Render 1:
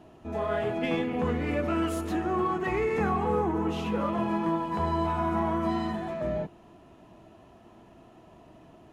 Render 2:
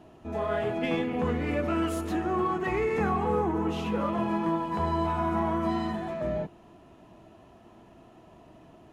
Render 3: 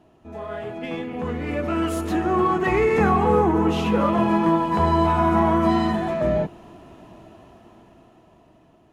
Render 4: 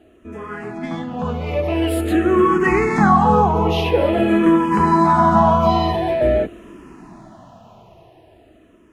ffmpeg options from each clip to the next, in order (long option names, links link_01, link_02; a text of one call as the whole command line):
ffmpeg -i in.wav -af anull out.wav
ffmpeg -i in.wav -af "dynaudnorm=framelen=410:gausssize=9:maxgain=13.5dB,volume=-3.5dB" out.wav
ffmpeg -i in.wav -filter_complex "[0:a]asplit=2[link_01][link_02];[link_02]afreqshift=-0.47[link_03];[link_01][link_03]amix=inputs=2:normalize=1,volume=7.5dB" out.wav